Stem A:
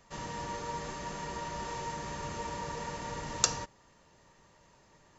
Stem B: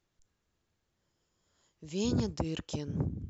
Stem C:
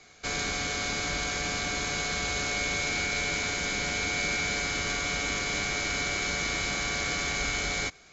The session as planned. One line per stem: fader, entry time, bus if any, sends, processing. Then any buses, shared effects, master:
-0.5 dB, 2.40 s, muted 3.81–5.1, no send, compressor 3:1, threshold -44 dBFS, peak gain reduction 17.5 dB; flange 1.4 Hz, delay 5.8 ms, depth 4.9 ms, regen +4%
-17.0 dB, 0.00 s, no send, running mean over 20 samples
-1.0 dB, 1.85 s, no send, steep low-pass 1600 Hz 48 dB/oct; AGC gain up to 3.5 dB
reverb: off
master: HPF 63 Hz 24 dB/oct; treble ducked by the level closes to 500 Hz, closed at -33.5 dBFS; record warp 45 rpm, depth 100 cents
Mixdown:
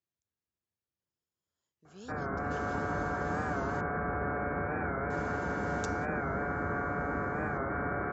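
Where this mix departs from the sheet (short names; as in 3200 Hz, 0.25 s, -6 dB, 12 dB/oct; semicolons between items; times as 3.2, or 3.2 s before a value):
stem B: missing running mean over 20 samples; master: missing treble ducked by the level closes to 500 Hz, closed at -33.5 dBFS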